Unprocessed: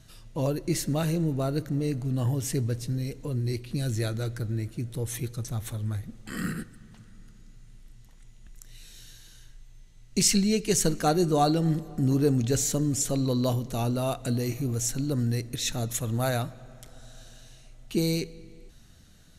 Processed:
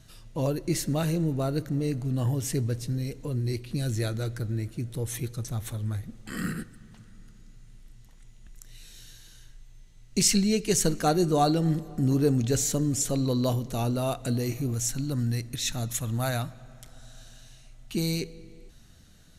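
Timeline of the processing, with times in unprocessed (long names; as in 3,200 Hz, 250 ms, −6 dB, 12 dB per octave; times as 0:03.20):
0:14.74–0:18.20: parametric band 440 Hz −7 dB 0.98 octaves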